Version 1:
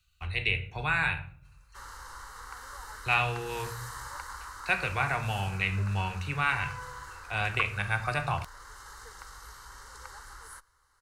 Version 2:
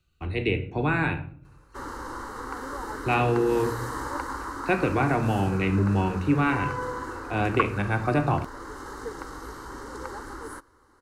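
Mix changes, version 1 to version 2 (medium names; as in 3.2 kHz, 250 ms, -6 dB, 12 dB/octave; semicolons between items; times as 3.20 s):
speech -6.5 dB; master: remove amplifier tone stack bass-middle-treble 10-0-10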